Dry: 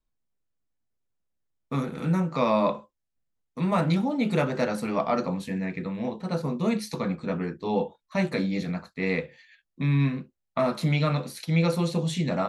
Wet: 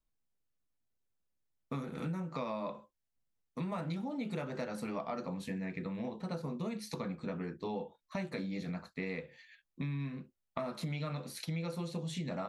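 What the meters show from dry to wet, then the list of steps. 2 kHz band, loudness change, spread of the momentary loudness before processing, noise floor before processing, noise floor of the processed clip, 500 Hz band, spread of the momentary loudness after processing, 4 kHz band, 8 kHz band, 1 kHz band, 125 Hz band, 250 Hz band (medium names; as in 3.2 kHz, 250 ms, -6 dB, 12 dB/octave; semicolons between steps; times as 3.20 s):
-12.5 dB, -12.5 dB, 8 LU, -81 dBFS, -84 dBFS, -13.0 dB, 5 LU, -11.0 dB, -9.0 dB, -13.0 dB, -13.0 dB, -12.0 dB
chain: compression 6:1, threshold -32 dBFS, peak gain reduction 13 dB; trim -3.5 dB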